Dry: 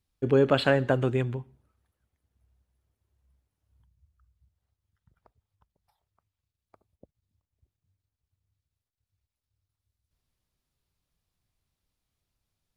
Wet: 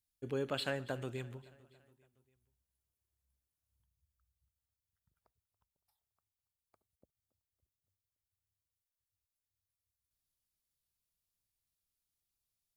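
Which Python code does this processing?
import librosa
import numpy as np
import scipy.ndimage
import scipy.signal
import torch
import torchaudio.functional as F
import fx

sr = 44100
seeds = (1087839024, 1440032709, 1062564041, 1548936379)

y = librosa.effects.preemphasis(x, coef=0.8, zi=[0.0])
y = fx.echo_feedback(y, sr, ms=282, feedback_pct=55, wet_db=-20.5)
y = y * 10.0 ** (-2.0 / 20.0)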